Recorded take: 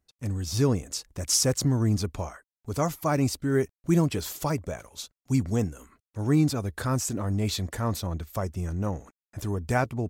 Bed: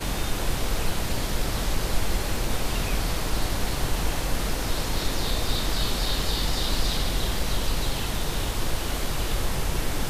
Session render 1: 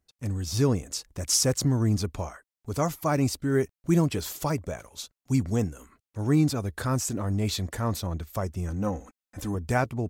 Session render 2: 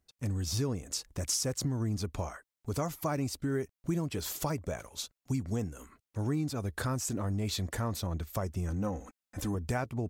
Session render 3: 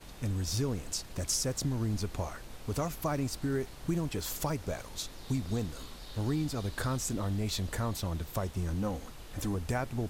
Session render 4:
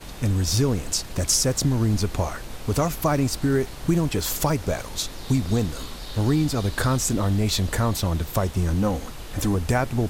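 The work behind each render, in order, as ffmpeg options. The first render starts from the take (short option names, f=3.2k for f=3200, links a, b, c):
-filter_complex "[0:a]asettb=1/sr,asplit=3[a][b][c];[a]atrim=end=8.694[d];[b]atrim=start=8.69:end=9.55,asetpts=PTS-STARTPTS,afade=t=in:d=0.004:c=qsin,afade=t=out:st=0.856:d=0.004:c=qsin,aecho=1:1:3.9:0.65,atrim=end_sample=37926[e];[c]atrim=start=9.546[f];[d][e]acrossfade=d=0.004:c1=hsin:c2=qsin[g];[g][f]acrossfade=d=0.004:c1=qsin:c2=hsin"
-af "acompressor=threshold=-30dB:ratio=4"
-filter_complex "[1:a]volume=-21dB[a];[0:a][a]amix=inputs=2:normalize=0"
-af "volume=10.5dB"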